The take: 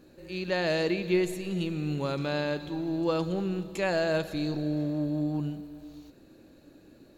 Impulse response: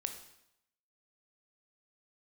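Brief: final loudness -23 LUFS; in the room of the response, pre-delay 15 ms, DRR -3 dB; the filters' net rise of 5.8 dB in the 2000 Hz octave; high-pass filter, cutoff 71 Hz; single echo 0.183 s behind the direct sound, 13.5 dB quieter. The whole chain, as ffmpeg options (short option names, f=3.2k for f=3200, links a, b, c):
-filter_complex "[0:a]highpass=71,equalizer=f=2k:t=o:g=7.5,aecho=1:1:183:0.211,asplit=2[a][b];[1:a]atrim=start_sample=2205,adelay=15[c];[b][c]afir=irnorm=-1:irlink=0,volume=3dB[d];[a][d]amix=inputs=2:normalize=0,volume=2dB"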